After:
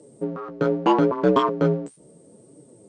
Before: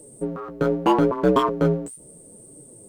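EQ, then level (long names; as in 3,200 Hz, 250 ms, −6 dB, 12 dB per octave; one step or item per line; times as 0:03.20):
high-pass filter 120 Hz 12 dB per octave
low-pass filter 6,400 Hz 24 dB per octave
0.0 dB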